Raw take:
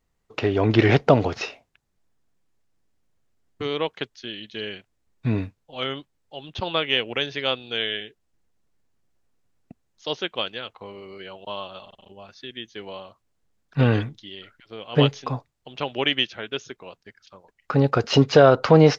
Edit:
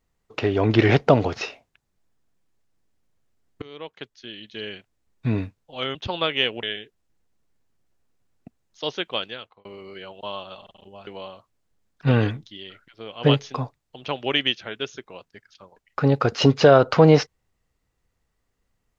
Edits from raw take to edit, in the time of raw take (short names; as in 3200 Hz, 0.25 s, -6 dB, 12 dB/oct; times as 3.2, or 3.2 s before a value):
3.62–5.3 fade in equal-power, from -20 dB
5.95–6.48 cut
7.16–7.87 cut
10.51–10.89 fade out
12.31–12.79 cut